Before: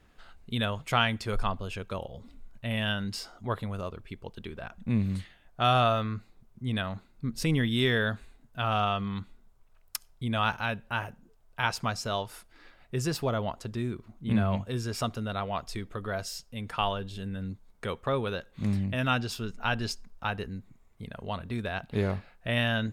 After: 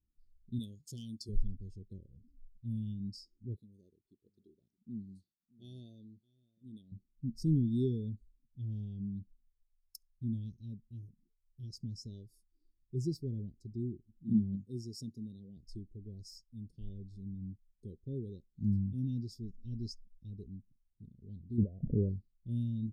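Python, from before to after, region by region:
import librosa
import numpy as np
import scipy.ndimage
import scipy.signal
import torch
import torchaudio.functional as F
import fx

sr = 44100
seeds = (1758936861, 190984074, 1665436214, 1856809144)

y = fx.chain(x, sr, fx.highpass(hz=220.0, slope=6),
    fx.high_shelf(hz=2400.0, db=10.5),
    fx.overload_stage(gain_db=8.5), at=(0.59, 1.29))
y = fx.chain(y, sr, fx.highpass(hz=530.0, slope=6),
    fx.echo_single(ms=619, db=-16.0), at=(3.56, 6.92))
y = fx.chain(y, sr, fx.highpass(hz=130.0, slope=12),
    fx.high_shelf(hz=4200.0, db=4.5), at=(14.23, 15.57))
y = fx.chain(y, sr, fx.steep_lowpass(hz=2000.0, slope=36),
    fx.band_shelf(hz=730.0, db=13.5, octaves=1.3),
    fx.pre_swell(db_per_s=20.0), at=(21.58, 22.09))
y = scipy.signal.sosfilt(scipy.signal.ellip(3, 1.0, 50, [360.0, 4800.0], 'bandstop', fs=sr, output='sos'), y)
y = fx.spectral_expand(y, sr, expansion=1.5)
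y = F.gain(torch.from_numpy(y), -6.0).numpy()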